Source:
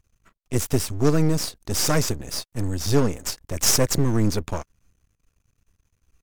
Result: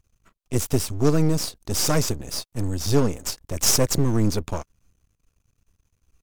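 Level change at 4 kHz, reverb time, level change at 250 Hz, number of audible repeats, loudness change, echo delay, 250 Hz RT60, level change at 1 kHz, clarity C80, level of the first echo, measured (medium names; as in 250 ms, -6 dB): 0.0 dB, no reverb, 0.0 dB, no echo, 0.0 dB, no echo, no reverb, -0.5 dB, no reverb, no echo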